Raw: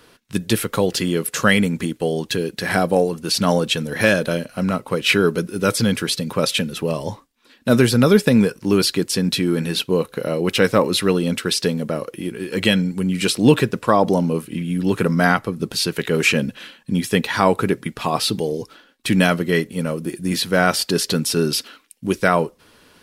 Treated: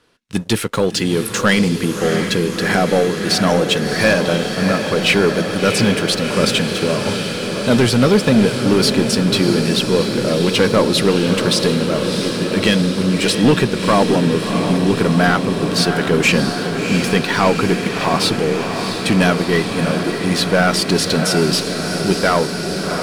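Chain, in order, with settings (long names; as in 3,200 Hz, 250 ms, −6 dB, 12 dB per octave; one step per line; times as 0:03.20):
low-pass filter 9,200 Hz 12 dB per octave
leveller curve on the samples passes 2
on a send: feedback delay with all-pass diffusion 677 ms, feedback 77%, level −7 dB
on the sum: level −4 dB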